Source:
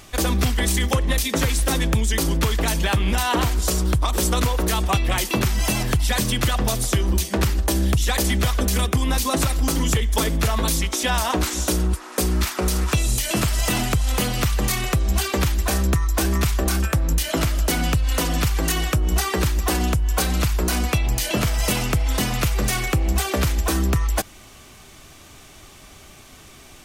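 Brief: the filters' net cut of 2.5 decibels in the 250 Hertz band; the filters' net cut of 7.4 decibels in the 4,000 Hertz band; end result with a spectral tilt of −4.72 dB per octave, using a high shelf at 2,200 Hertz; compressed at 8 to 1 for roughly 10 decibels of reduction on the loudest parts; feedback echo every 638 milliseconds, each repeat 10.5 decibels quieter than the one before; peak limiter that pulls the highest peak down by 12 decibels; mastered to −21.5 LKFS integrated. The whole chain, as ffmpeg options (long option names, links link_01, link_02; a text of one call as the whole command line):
ffmpeg -i in.wav -af "equalizer=frequency=250:width_type=o:gain=-3.5,highshelf=frequency=2200:gain=-3.5,equalizer=frequency=4000:width_type=o:gain=-6.5,acompressor=threshold=-27dB:ratio=8,alimiter=level_in=2.5dB:limit=-24dB:level=0:latency=1,volume=-2.5dB,aecho=1:1:638|1276|1914:0.299|0.0896|0.0269,volume=13.5dB" out.wav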